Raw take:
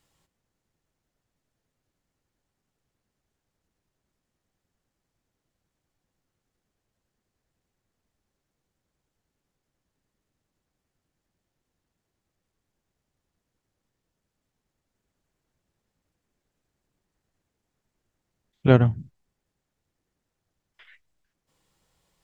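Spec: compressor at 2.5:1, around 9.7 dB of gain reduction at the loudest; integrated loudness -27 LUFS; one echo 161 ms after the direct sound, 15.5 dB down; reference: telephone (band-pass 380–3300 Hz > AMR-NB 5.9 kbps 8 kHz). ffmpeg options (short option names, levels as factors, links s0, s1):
-af "acompressor=threshold=0.0631:ratio=2.5,highpass=380,lowpass=3300,aecho=1:1:161:0.168,volume=2.99" -ar 8000 -c:a libopencore_amrnb -b:a 5900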